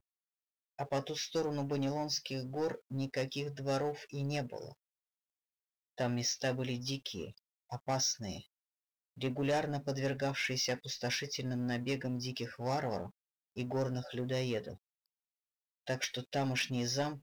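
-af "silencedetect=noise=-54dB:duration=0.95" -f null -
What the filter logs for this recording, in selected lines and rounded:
silence_start: 4.73
silence_end: 5.98 | silence_duration: 1.25
silence_start: 14.77
silence_end: 15.87 | silence_duration: 1.10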